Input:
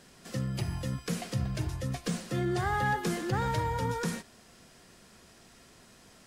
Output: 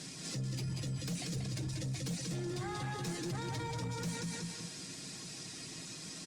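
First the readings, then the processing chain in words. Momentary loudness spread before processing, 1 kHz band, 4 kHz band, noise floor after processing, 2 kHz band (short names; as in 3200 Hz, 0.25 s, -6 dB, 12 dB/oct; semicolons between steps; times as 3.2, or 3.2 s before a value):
7 LU, -12.0 dB, +0.5 dB, -47 dBFS, -9.5 dB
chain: speaker cabinet 140–9400 Hz, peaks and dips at 210 Hz -6 dB, 370 Hz +6 dB, 3000 Hz -8 dB; in parallel at 0 dB: compressor, threshold -39 dBFS, peak gain reduction 14 dB; on the sum: resonator 270 Hz, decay 1 s, mix 70%; reverb removal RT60 0.51 s; band shelf 790 Hz -12.5 dB 2.8 oct; on a send: feedback echo 0.186 s, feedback 35%, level -5 dB; on the sum: sine folder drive 7 dB, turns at -31 dBFS; comb 6.4 ms, depth 43%; limiter -39.5 dBFS, peak gain reduction 11.5 dB; gain +7 dB; Opus 64 kbps 48000 Hz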